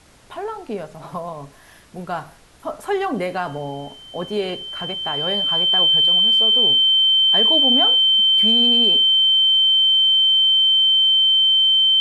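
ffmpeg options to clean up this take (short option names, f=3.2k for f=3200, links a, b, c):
-af "bandreject=f=3.1k:w=30,agate=range=-21dB:threshold=-34dB"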